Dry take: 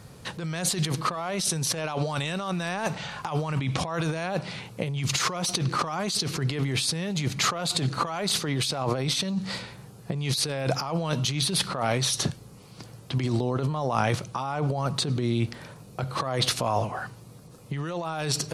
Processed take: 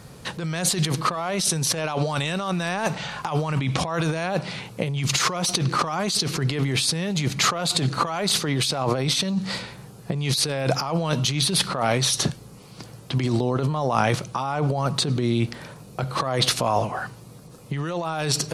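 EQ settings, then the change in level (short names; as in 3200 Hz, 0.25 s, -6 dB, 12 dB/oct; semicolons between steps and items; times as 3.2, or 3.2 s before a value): bell 96 Hz -5.5 dB 0.37 oct; +4.0 dB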